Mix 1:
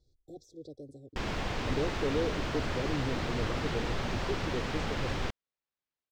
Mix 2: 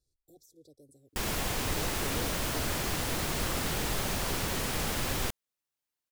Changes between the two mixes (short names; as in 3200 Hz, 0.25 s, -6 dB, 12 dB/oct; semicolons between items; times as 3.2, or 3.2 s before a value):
speech -12.0 dB; master: remove air absorption 170 m